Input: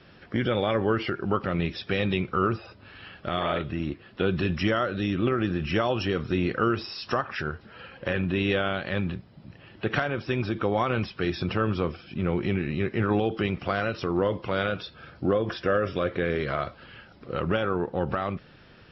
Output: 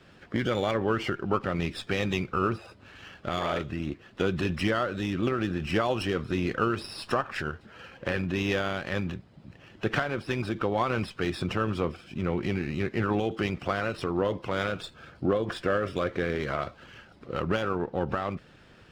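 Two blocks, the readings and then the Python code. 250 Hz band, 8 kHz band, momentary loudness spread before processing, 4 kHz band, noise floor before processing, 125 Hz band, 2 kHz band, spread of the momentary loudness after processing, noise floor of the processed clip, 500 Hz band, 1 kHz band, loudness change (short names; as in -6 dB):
-2.5 dB, n/a, 9 LU, -2.0 dB, -53 dBFS, -3.0 dB, -1.5 dB, 9 LU, -55 dBFS, -2.0 dB, -1.5 dB, -2.0 dB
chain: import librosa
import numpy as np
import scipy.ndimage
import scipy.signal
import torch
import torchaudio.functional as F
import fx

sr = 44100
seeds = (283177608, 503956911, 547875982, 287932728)

y = fx.hpss(x, sr, part='harmonic', gain_db=-4)
y = fx.running_max(y, sr, window=3)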